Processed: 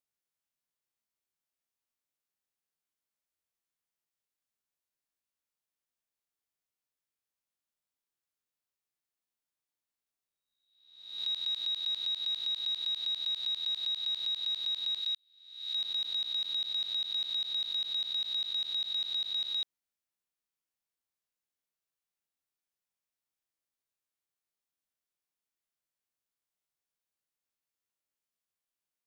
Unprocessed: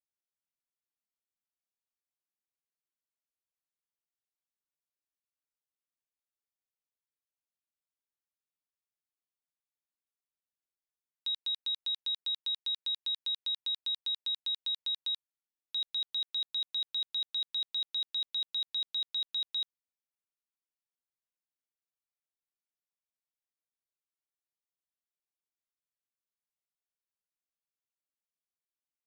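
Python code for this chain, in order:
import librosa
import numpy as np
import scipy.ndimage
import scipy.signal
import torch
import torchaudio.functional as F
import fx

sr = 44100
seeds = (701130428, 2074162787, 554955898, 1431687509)

y = fx.spec_swells(x, sr, rise_s=0.79)
y = fx.highpass(y, sr, hz=1300.0, slope=12, at=(15.0, 15.75))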